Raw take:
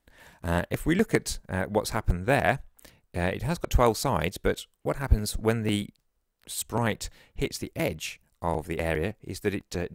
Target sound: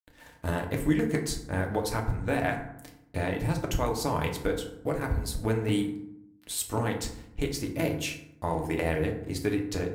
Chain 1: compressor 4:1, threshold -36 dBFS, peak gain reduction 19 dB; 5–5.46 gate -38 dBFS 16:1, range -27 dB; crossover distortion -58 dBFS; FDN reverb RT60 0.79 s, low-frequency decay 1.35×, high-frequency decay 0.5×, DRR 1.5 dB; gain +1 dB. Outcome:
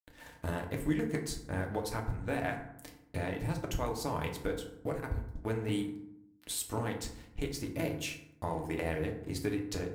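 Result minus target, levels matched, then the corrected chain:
compressor: peak gain reduction +6 dB
compressor 4:1, threshold -28 dBFS, peak gain reduction 13 dB; 5–5.46 gate -38 dBFS 16:1, range -27 dB; crossover distortion -58 dBFS; FDN reverb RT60 0.79 s, low-frequency decay 1.35×, high-frequency decay 0.5×, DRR 1.5 dB; gain +1 dB

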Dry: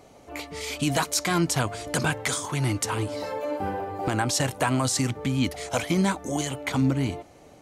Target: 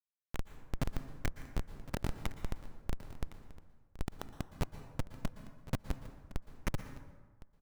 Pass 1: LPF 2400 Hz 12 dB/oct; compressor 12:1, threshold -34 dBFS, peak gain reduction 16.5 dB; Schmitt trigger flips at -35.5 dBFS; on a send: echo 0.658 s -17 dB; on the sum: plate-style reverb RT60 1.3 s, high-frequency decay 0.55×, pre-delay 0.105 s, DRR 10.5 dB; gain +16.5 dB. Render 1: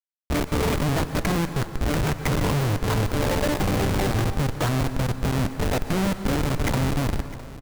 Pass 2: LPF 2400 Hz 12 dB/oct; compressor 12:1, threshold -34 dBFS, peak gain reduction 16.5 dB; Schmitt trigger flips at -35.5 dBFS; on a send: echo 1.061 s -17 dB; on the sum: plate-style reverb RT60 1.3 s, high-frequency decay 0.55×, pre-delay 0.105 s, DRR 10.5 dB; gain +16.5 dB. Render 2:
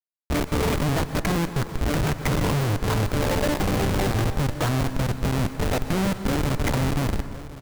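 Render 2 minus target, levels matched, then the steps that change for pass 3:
compressor: peak gain reduction -7.5 dB
change: compressor 12:1, threshold -42 dBFS, peak gain reduction 23.5 dB

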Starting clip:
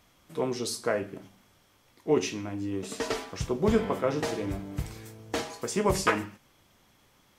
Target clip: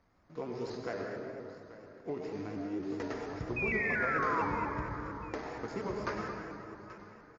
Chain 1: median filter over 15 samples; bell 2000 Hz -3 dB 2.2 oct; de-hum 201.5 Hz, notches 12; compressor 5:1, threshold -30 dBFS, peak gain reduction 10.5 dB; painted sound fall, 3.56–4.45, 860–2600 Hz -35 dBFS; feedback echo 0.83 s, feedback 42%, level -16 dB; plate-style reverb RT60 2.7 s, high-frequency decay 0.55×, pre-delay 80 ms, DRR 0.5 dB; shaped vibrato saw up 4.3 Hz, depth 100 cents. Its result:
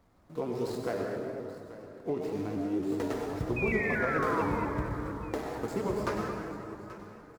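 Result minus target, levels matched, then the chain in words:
8000 Hz band +4.0 dB
median filter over 15 samples; bell 2000 Hz -3 dB 2.2 oct; de-hum 201.5 Hz, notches 12; compressor 5:1, threshold -30 dBFS, peak gain reduction 10.5 dB; rippled Chebyshev low-pass 6800 Hz, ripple 6 dB; painted sound fall, 3.56–4.45, 860–2600 Hz -35 dBFS; feedback echo 0.83 s, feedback 42%, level -16 dB; plate-style reverb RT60 2.7 s, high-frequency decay 0.55×, pre-delay 80 ms, DRR 0.5 dB; shaped vibrato saw up 4.3 Hz, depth 100 cents

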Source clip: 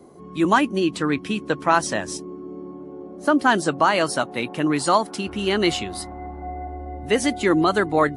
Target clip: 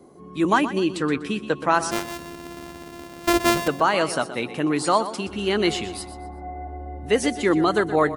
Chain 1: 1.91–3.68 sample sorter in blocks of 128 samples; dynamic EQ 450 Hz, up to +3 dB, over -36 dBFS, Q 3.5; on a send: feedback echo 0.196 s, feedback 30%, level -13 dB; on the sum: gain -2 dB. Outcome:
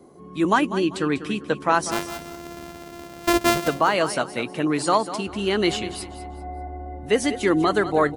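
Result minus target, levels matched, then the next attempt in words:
echo 73 ms late
1.91–3.68 sample sorter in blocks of 128 samples; dynamic EQ 450 Hz, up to +3 dB, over -36 dBFS, Q 3.5; on a send: feedback echo 0.123 s, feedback 30%, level -13 dB; on the sum: gain -2 dB

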